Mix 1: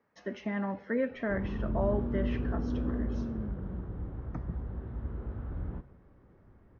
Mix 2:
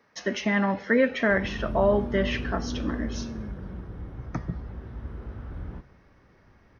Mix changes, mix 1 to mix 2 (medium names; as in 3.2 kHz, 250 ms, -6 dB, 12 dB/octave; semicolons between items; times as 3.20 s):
speech +8.0 dB; master: remove low-pass 1.1 kHz 6 dB/octave